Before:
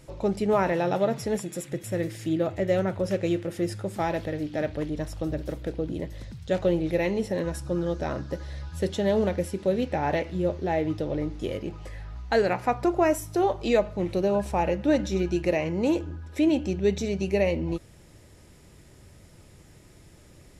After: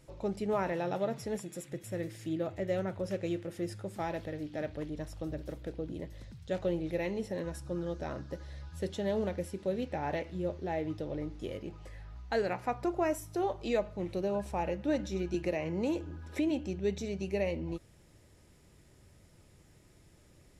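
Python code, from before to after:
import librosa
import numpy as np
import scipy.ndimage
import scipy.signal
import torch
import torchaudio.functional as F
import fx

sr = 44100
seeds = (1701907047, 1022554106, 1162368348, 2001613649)

y = fx.band_squash(x, sr, depth_pct=70, at=(15.34, 16.51))
y = y * librosa.db_to_amplitude(-8.5)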